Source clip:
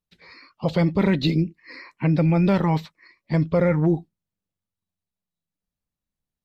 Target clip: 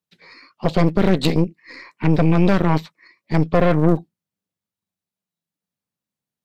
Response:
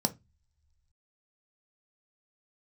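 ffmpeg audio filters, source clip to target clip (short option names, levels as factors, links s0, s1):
-filter_complex "[0:a]acrossover=split=100|590|1200[s0][s1][s2][s3];[s0]acrusher=bits=4:dc=4:mix=0:aa=0.000001[s4];[s4][s1][s2][s3]amix=inputs=4:normalize=0,aeval=exprs='0.355*(cos(1*acos(clip(val(0)/0.355,-1,1)))-cos(1*PI/2))+0.1*(cos(4*acos(clip(val(0)/0.355,-1,1)))-cos(4*PI/2))+0.0126*(cos(8*acos(clip(val(0)/0.355,-1,1)))-cos(8*PI/2))':c=same,volume=1.26"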